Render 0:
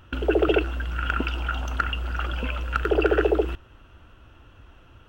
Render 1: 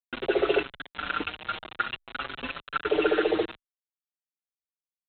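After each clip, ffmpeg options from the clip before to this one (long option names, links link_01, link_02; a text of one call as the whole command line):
ffmpeg -i in.wav -filter_complex "[0:a]highpass=230,aresample=8000,acrusher=bits=4:mix=0:aa=0.000001,aresample=44100,asplit=2[link_01][link_02];[link_02]adelay=5.8,afreqshift=0.54[link_03];[link_01][link_03]amix=inputs=2:normalize=1" out.wav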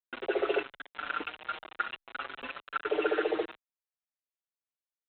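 ffmpeg -i in.wav -af "bass=frequency=250:gain=-13,treble=frequency=4000:gain=-13,volume=-3.5dB" out.wav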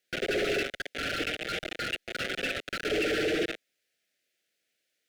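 ffmpeg -i in.wav -filter_complex "[0:a]asplit=2[link_01][link_02];[link_02]highpass=frequency=720:poles=1,volume=33dB,asoftclip=type=tanh:threshold=-16dB[link_03];[link_01][link_03]amix=inputs=2:normalize=0,lowpass=frequency=1900:poles=1,volume=-6dB,asoftclip=type=hard:threshold=-24.5dB,asuperstop=centerf=1000:order=4:qfactor=0.9" out.wav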